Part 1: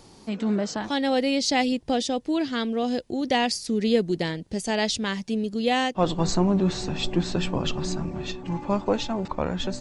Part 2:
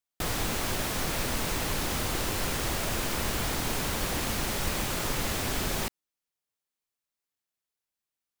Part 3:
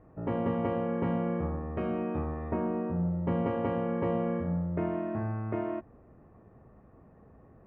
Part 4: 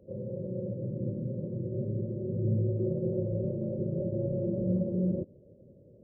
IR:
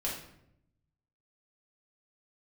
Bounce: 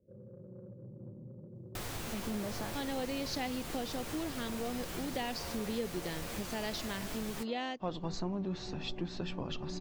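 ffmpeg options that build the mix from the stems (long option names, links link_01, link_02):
-filter_complex "[0:a]lowpass=frequency=6000:width=0.5412,lowpass=frequency=6000:width=1.3066,adelay=1850,volume=-7dB[link_01];[1:a]flanger=delay=6.2:depth=6.9:regen=56:speed=0.88:shape=sinusoidal,adelay=1550,volume=-3.5dB[link_02];[2:a]highpass=480,adelay=1950,volume=-9.5dB[link_03];[3:a]asoftclip=type=tanh:threshold=-25.5dB,adynamicsmooth=sensitivity=0.5:basefreq=740,volume=-13dB[link_04];[link_01][link_02][link_03][link_04]amix=inputs=4:normalize=0,acompressor=threshold=-39dB:ratio=2"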